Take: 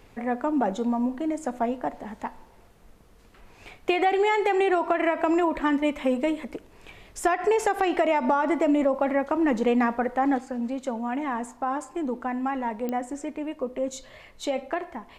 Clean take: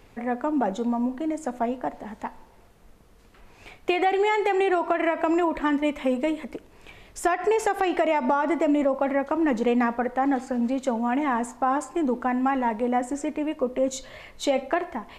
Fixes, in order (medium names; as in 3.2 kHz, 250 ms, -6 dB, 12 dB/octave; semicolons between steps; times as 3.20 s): de-click; trim 0 dB, from 10.38 s +4.5 dB